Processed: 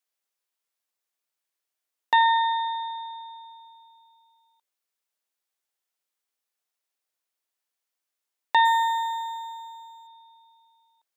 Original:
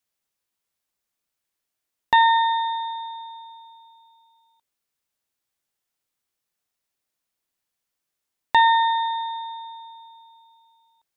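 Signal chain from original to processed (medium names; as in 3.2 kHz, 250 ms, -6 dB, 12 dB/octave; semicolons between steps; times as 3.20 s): high-pass 380 Hz 12 dB/octave; 8.65–10.07 s: decimation joined by straight lines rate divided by 4×; trim -3 dB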